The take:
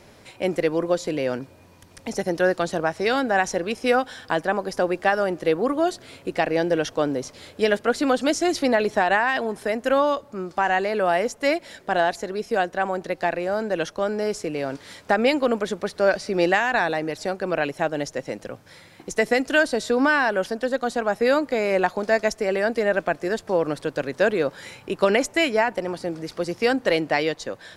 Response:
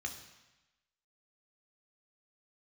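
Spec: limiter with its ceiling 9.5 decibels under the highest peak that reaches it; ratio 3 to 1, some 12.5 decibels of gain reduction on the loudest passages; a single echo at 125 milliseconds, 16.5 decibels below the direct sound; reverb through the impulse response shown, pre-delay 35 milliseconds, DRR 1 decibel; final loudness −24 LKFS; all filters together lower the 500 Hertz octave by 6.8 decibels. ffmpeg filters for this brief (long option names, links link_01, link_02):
-filter_complex "[0:a]equalizer=frequency=500:width_type=o:gain=-8.5,acompressor=threshold=-35dB:ratio=3,alimiter=level_in=2dB:limit=-24dB:level=0:latency=1,volume=-2dB,aecho=1:1:125:0.15,asplit=2[link_01][link_02];[1:a]atrim=start_sample=2205,adelay=35[link_03];[link_02][link_03]afir=irnorm=-1:irlink=0,volume=-1dB[link_04];[link_01][link_04]amix=inputs=2:normalize=0,volume=11.5dB"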